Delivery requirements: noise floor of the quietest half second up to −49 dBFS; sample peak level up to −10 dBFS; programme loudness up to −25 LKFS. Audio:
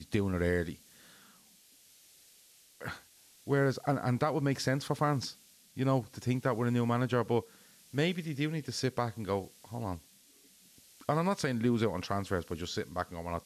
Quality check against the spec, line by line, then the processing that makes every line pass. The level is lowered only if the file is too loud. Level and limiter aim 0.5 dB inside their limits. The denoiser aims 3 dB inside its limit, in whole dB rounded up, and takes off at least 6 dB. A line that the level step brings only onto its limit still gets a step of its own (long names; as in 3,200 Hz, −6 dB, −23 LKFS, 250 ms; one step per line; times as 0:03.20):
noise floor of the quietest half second −61 dBFS: in spec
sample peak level −17.5 dBFS: in spec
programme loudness −33.0 LKFS: in spec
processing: no processing needed